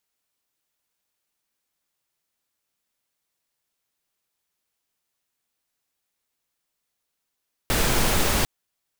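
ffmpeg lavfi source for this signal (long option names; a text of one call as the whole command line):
ffmpeg -f lavfi -i "anoisesrc=color=pink:amplitude=0.457:duration=0.75:sample_rate=44100:seed=1" out.wav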